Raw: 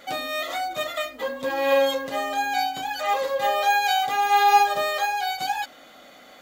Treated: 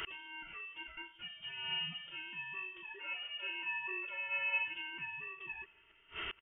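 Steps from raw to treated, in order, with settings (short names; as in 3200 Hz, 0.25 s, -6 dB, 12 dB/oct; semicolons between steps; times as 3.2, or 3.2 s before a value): inverted band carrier 3400 Hz; 2.83–4.68 resonant low shelf 300 Hz -12.5 dB, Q 3; feedback echo 0.185 s, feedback 35%, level -23 dB; flipped gate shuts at -38 dBFS, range -27 dB; gain +8 dB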